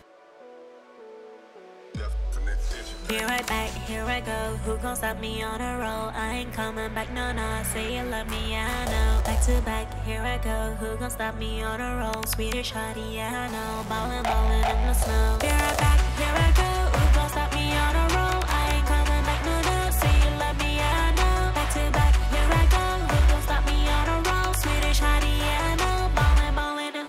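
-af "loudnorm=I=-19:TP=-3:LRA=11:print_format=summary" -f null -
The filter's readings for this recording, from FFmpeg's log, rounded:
Input Integrated:    -25.1 LUFS
Input True Peak:     -11.9 dBTP
Input LRA:             6.5 LU
Input Threshold:     -35.4 LUFS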